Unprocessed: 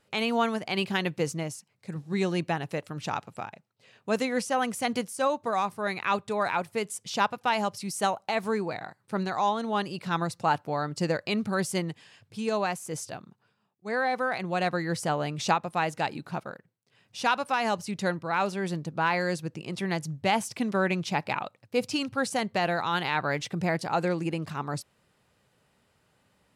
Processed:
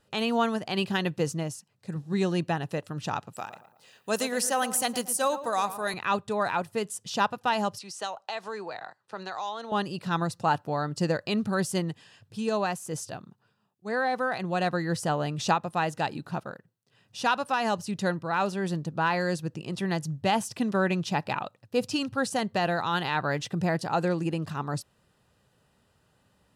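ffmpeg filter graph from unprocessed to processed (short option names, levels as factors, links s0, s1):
-filter_complex "[0:a]asettb=1/sr,asplit=3[s0][s1][s2];[s0]atrim=end=3.334[s3];[s1]atrim=start=3.33:end=5.94,asetpts=PTS-STARTPTS,afade=t=in:d=0.004:c=qsin,afade=t=out:st=2.606:d=0.004:c=qsin,aemphasis=mode=production:type=bsi,asplit=2[s4][s5];[s5]adelay=114,lowpass=f=1800:p=1,volume=0.251,asplit=2[s6][s7];[s7]adelay=114,lowpass=f=1800:p=1,volume=0.44,asplit=2[s8][s9];[s9]adelay=114,lowpass=f=1800:p=1,volume=0.44,asplit=2[s10][s11];[s11]adelay=114,lowpass=f=1800:p=1,volume=0.44[s12];[s4][s6][s8][s10][s12]amix=inputs=5:normalize=0,atrim=end_sample=115101[s13];[s2]atrim=start=5.936[s14];[s3][s13]acrossfade=d=0.004:c1=hsin:c2=qsin[s15];[s15][s14]acrossfade=d=0.004:c1=qsin:c2=hsin,asettb=1/sr,asplit=3[s16][s17][s18];[s16]atrim=end=7.794[s19];[s17]atrim=start=7.79:end=9.72,asetpts=PTS-STARTPTS,afade=t=in:d=0.004:c=qsin,afade=t=out:st=1.926:d=0.004:c=qsin,acrossover=split=430 7300:gain=0.141 1 0.126[s20][s21][s22];[s20][s21][s22]amix=inputs=3:normalize=0,acrossover=split=140|3000[s23][s24][s25];[s24]acompressor=threshold=0.0251:ratio=3:attack=3.2:release=140:knee=2.83:detection=peak[s26];[s23][s26][s25]amix=inputs=3:normalize=0[s27];[s18]atrim=start=9.716[s28];[s19][s27]acrossfade=d=0.004:c1=hsin:c2=qsin[s29];[s29][s28]acrossfade=d=0.004:c1=qsin:c2=hsin,lowshelf=f=120:g=6,bandreject=f=2200:w=6"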